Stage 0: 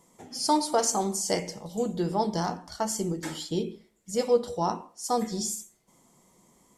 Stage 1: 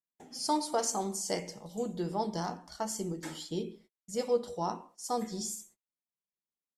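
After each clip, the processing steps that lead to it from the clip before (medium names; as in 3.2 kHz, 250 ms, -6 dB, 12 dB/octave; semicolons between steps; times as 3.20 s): gate -51 dBFS, range -40 dB; peaking EQ 95 Hz -12 dB 0.33 oct; trim -6 dB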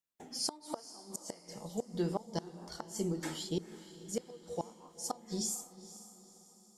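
inverted gate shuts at -24 dBFS, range -26 dB; echo that smears into a reverb 490 ms, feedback 46%, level -15 dB; trim +1.5 dB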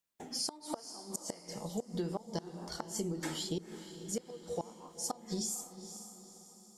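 compression 6:1, threshold -37 dBFS, peak gain reduction 9 dB; trim +4 dB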